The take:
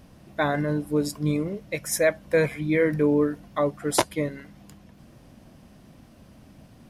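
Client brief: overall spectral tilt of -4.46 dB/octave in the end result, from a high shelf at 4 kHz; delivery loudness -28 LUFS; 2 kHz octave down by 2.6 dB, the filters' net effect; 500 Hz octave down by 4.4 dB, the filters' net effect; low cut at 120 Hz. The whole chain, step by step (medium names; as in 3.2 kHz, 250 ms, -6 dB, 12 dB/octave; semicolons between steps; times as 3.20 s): high-pass 120 Hz; peaking EQ 500 Hz -5 dB; peaking EQ 2 kHz -3.5 dB; treble shelf 4 kHz +3 dB; trim -0.5 dB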